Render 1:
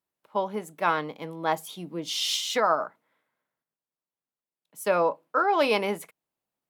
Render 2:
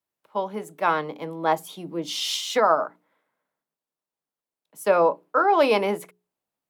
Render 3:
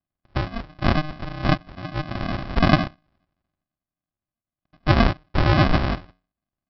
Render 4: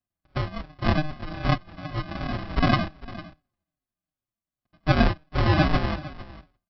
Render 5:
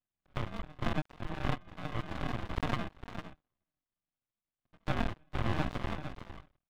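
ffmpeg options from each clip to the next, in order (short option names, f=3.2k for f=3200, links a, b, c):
-filter_complex "[0:a]bandreject=f=60:t=h:w=6,bandreject=f=120:t=h:w=6,bandreject=f=180:t=h:w=6,bandreject=f=240:t=h:w=6,bandreject=f=300:t=h:w=6,bandreject=f=360:t=h:w=6,bandreject=f=420:t=h:w=6,acrossover=split=180|1300|7000[a][b][c][d];[b]dynaudnorm=f=230:g=7:m=5dB[e];[a][e][c][d]amix=inputs=4:normalize=0"
-af "aresample=11025,acrusher=samples=24:mix=1:aa=0.000001,aresample=44100,equalizer=f=1.2k:t=o:w=2.5:g=6.5,volume=1dB"
-filter_complex "[0:a]aecho=1:1:453:0.133,asplit=2[a][b];[b]adelay=5.1,afreqshift=-2.6[c];[a][c]amix=inputs=2:normalize=1"
-af "aresample=8000,aresample=44100,acompressor=threshold=-29dB:ratio=2.5,aeval=exprs='max(val(0),0)':c=same"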